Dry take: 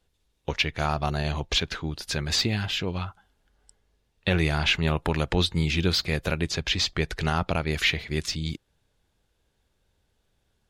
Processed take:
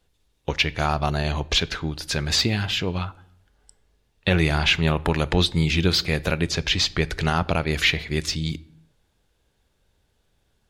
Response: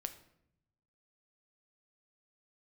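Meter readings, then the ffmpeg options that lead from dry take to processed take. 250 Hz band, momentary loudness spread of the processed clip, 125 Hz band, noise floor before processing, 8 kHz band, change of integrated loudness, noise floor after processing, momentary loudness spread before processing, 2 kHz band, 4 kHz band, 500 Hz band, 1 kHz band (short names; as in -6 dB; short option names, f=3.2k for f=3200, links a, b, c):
+3.5 dB, 9 LU, +3.5 dB, -73 dBFS, +3.5 dB, +3.5 dB, -69 dBFS, 9 LU, +3.5 dB, +3.5 dB, +3.5 dB, +3.5 dB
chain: -filter_complex "[0:a]asplit=2[a][b];[1:a]atrim=start_sample=2205,afade=t=out:st=0.44:d=0.01,atrim=end_sample=19845[c];[b][c]afir=irnorm=-1:irlink=0,volume=-3.5dB[d];[a][d]amix=inputs=2:normalize=0"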